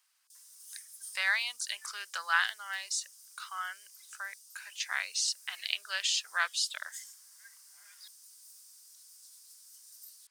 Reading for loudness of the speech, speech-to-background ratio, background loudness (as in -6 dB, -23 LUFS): -33.0 LUFS, 18.0 dB, -51.0 LUFS